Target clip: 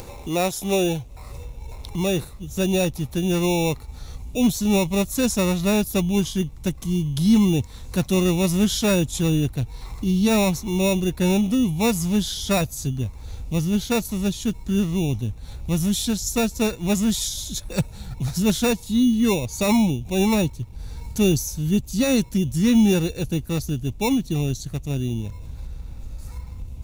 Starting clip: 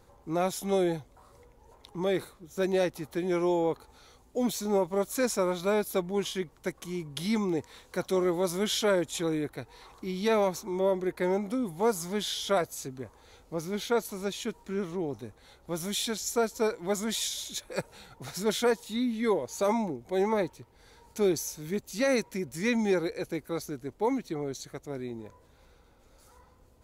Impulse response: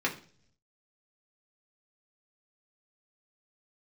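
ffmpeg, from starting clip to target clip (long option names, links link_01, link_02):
-filter_complex "[0:a]equalizer=frequency=2300:width_type=o:width=0.86:gain=-11,acrossover=split=1500[link_01][link_02];[link_01]acrusher=samples=14:mix=1:aa=0.000001[link_03];[link_03][link_02]amix=inputs=2:normalize=0,asubboost=boost=9:cutoff=140,acompressor=mode=upward:threshold=-33dB:ratio=2.5,volume=7dB"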